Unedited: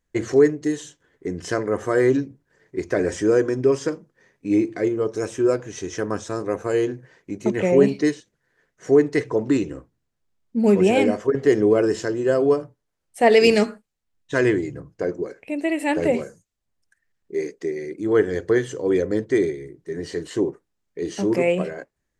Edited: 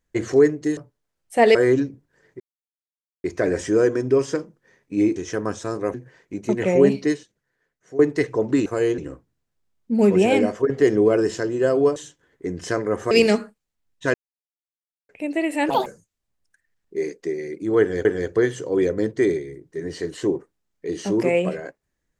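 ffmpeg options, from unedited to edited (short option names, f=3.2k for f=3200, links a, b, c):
-filter_complex "[0:a]asplit=16[a][b][c][d][e][f][g][h][i][j][k][l][m][n][o][p];[a]atrim=end=0.772[q];[b]atrim=start=12.608:end=13.392[r];[c]atrim=start=1.918:end=2.77,asetpts=PTS-STARTPTS,afade=t=out:st=0.848:d=0.004:c=hsin,apad=pad_dur=0.84[s];[d]atrim=start=2.77:end=4.692,asetpts=PTS-STARTPTS,afade=t=in:d=0.004:c=hsin[t];[e]atrim=start=5.808:end=6.592[u];[f]atrim=start=6.908:end=8.96,asetpts=PTS-STARTPTS,afade=t=out:st=0.972:d=1.08:silence=0.141254[v];[g]atrim=start=8.96:end=9.632,asetpts=PTS-STARTPTS,afade=t=in:d=0.004:c=hsin:silence=0.141254[w];[h]atrim=start=6.588:end=6.912[x];[i]atrim=start=9.628:end=12.612[y];[j]atrim=start=0.768:end=1.922[z];[k]atrim=start=13.388:end=14.42,asetpts=PTS-STARTPTS,afade=t=out:st=1.028:d=0.004:c=hsin[aa];[l]atrim=start=14.42:end=15.37,asetpts=PTS-STARTPTS,volume=0[ab];[m]atrim=start=15.37:end=15.984,asetpts=PTS-STARTPTS,afade=t=in:d=0.004:c=hsin[ac];[n]atrim=start=15.98:end=16.24,asetpts=PTS-STARTPTS,asetrate=71442,aresample=44100[ad];[o]atrim=start=16.236:end=18.432[ae];[p]atrim=start=18.178[af];[q][r]acrossfade=d=0.004:c1=hsin:c2=hsin[ag];[s][t]concat=n=2:v=0:a=1[ah];[ag][ah]acrossfade=d=0.004:c1=hsin:c2=hsin[ai];[ai][u]acrossfade=d=0.004:c1=hsin:c2=hsin[aj];[v][w]concat=n=2:v=0:a=1[ak];[aj][ak]acrossfade=d=0.004:c1=hsin:c2=hsin[al];[al][x]acrossfade=d=0.004:c1=hsin:c2=hsin[am];[am][y]acrossfade=d=0.004:c1=hsin:c2=hsin[an];[an][z]acrossfade=d=0.004:c1=hsin:c2=hsin[ao];[aa][ab][ac]concat=n=3:v=0:a=1[ap];[ao][ap]acrossfade=d=0.004:c1=hsin:c2=hsin[aq];[aq][ad]acrossfade=d=0.004:c1=hsin:c2=hsin[ar];[ar][ae]acrossfade=d=0.004:c1=hsin:c2=hsin[as];[as][af]acrossfade=d=0.004:c1=hsin:c2=hsin"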